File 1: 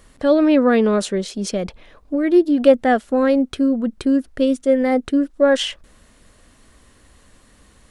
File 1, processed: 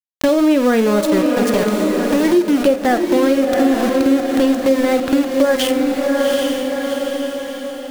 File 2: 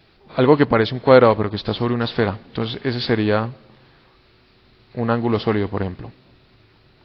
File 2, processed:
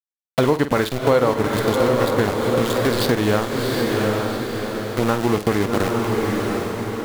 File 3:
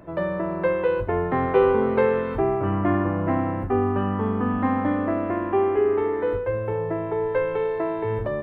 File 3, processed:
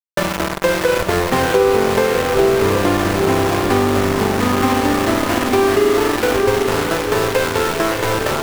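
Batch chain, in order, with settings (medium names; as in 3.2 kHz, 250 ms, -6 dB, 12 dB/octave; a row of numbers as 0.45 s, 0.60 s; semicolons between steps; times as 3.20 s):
small samples zeroed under -22 dBFS; on a send: echo that smears into a reverb 754 ms, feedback 47%, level -6 dB; on the sum: compression 4:1, threshold -22 dBFS; flutter echo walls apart 8.3 m, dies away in 0.24 s; peak normalisation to -3 dBFS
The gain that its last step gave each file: +9.0 dB, +6.5 dB, +9.5 dB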